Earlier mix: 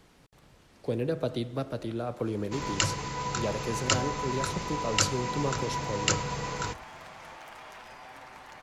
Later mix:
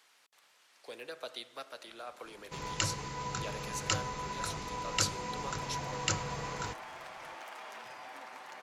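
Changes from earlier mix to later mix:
speech: add Bessel high-pass filter 1,400 Hz, order 2
second sound −5.5 dB

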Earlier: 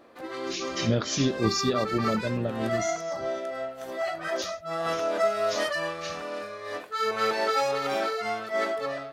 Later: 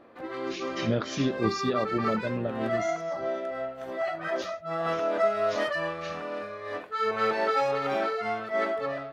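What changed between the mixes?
speech: add low-shelf EQ 160 Hz −10.5 dB
master: add bass and treble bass +3 dB, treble −13 dB

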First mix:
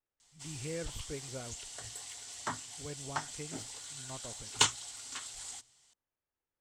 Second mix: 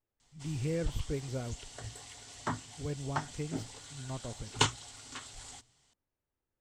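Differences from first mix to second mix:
background: add high-shelf EQ 6,000 Hz −9.5 dB
master: add low-shelf EQ 450 Hz +10 dB

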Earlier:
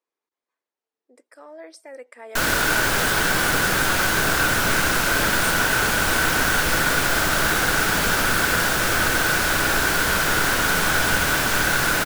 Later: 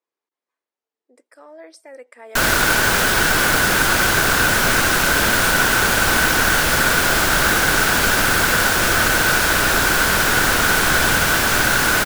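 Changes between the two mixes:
background +8.5 dB
reverb: off

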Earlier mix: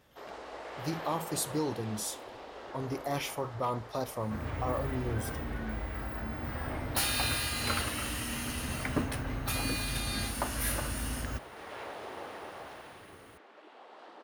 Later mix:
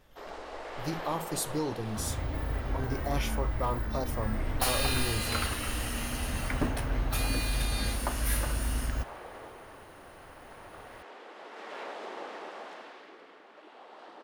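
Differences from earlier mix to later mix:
first sound: send on
second sound: entry −2.35 s
master: remove high-pass filter 77 Hz 12 dB per octave

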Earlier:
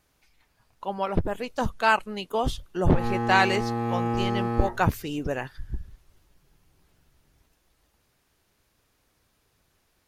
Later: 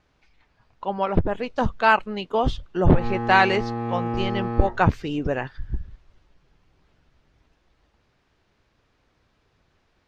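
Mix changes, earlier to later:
speech +4.5 dB
master: add high-frequency loss of the air 160 metres

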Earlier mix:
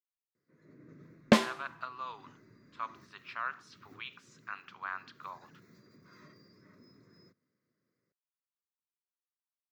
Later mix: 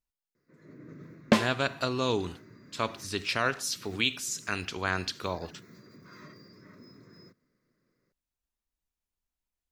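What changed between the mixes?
speech: remove four-pole ladder band-pass 1,300 Hz, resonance 55%
first sound +7.5 dB

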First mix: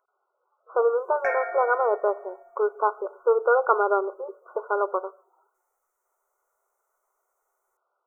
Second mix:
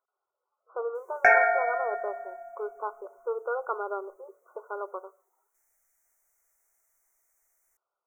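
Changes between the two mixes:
speech −11.0 dB
background +9.5 dB

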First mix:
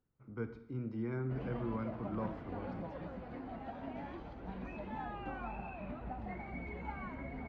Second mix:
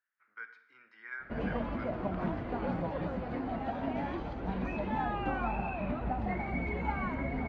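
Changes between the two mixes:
speech: add high-pass with resonance 1,700 Hz, resonance Q 5.9
background +9.5 dB

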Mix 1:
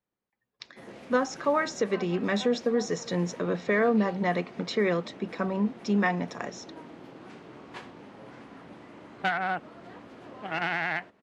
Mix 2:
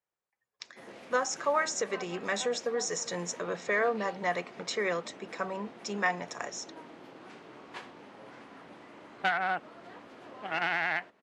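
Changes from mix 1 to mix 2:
speech: add graphic EQ with 10 bands 250 Hz −10 dB, 4,000 Hz −5 dB, 8,000 Hz +12 dB
master: add low-shelf EQ 250 Hz −11 dB

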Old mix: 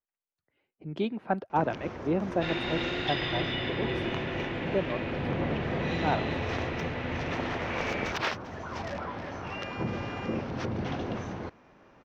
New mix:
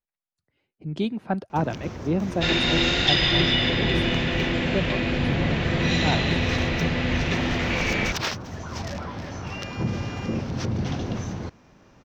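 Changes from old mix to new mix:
second sound +8.0 dB
master: add bass and treble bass +9 dB, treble +15 dB

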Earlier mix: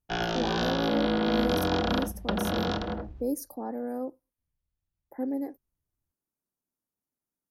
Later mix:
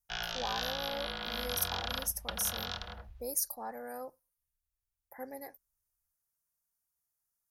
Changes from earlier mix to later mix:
speech +9.5 dB
master: add guitar amp tone stack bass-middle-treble 10-0-10

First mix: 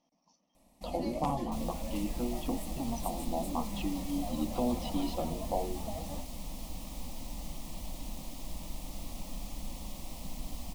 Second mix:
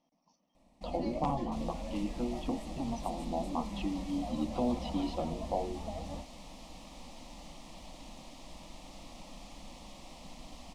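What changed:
second sound: add low-shelf EQ 220 Hz −12 dB
master: add high-frequency loss of the air 82 metres

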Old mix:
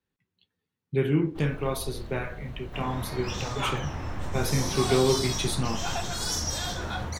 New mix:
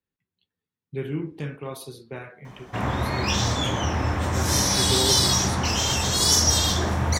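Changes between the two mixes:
speech −5.5 dB
first sound: muted
second sound +11.5 dB

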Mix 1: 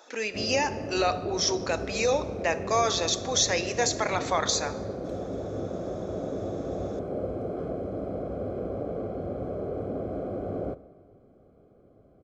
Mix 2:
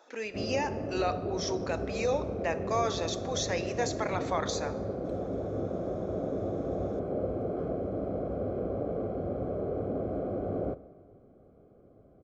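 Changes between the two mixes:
speech −4.0 dB
master: add high-shelf EQ 2,800 Hz −8.5 dB

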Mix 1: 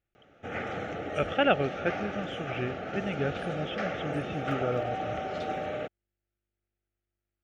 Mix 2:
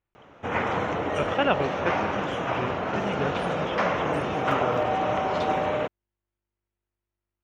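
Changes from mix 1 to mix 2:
background +7.5 dB
master: remove Butterworth band-reject 1,000 Hz, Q 2.8

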